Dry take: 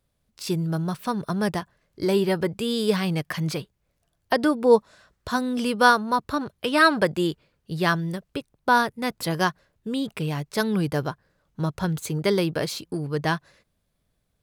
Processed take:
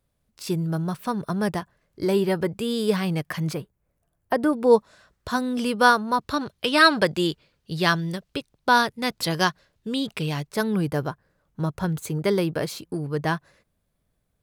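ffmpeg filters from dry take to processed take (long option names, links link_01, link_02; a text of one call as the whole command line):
ffmpeg -i in.wav -af "asetnsamples=nb_out_samples=441:pad=0,asendcmd='3.53 equalizer g -12;4.53 equalizer g -0.5;6.21 equalizer g 6;10.47 equalizer g -4.5',equalizer=frequency=4200:width_type=o:width=1.7:gain=-3" out.wav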